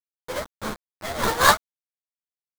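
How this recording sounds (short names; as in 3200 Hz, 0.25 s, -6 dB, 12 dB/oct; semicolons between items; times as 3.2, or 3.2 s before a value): aliases and images of a low sample rate 2700 Hz, jitter 20%; tremolo saw up 1.1 Hz, depth 95%; a quantiser's noise floor 6-bit, dither none; a shimmering, thickened sound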